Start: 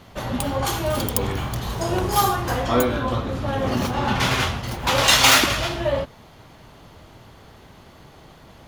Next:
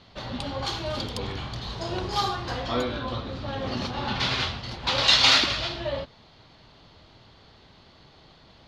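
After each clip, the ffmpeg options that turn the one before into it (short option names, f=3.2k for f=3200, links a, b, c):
-af "lowpass=f=4.3k:t=q:w=3.2,volume=-8dB"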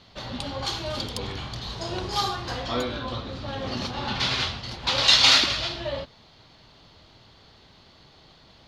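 -af "highshelf=f=4.7k:g=7,volume=-1dB"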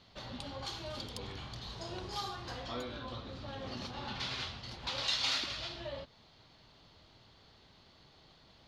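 -af "acompressor=threshold=-37dB:ratio=1.5,volume=-8dB"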